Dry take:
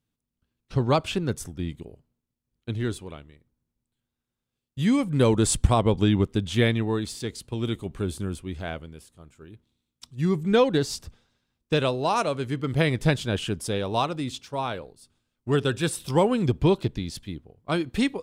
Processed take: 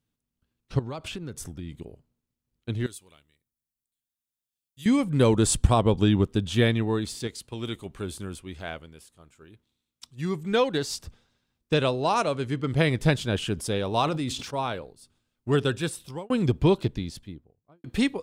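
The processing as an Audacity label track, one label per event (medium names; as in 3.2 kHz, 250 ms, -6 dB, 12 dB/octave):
0.790000	1.800000	compression, threshold -32 dBFS
2.860000	4.860000	pre-emphasis filter coefficient 0.9
5.440000	6.730000	band-stop 2.1 kHz
7.270000	11.030000	bass shelf 480 Hz -7 dB
11.740000	12.810000	low-pass 11 kHz
13.540000	14.580000	decay stretcher at most 50 dB/s
15.640000	16.300000	fade out
16.850000	17.840000	studio fade out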